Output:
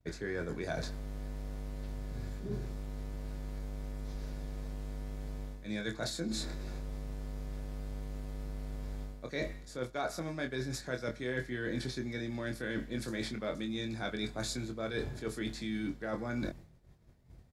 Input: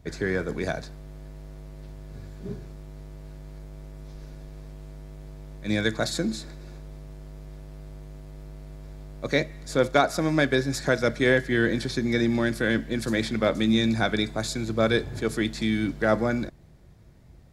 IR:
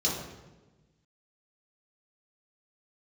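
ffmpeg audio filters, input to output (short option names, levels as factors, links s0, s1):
-filter_complex "[0:a]agate=range=0.0224:threshold=0.00708:ratio=3:detection=peak,areverse,acompressor=threshold=0.0178:ratio=10,areverse,asplit=2[s0][s1];[s1]adelay=24,volume=0.501[s2];[s0][s2]amix=inputs=2:normalize=0,volume=1.12"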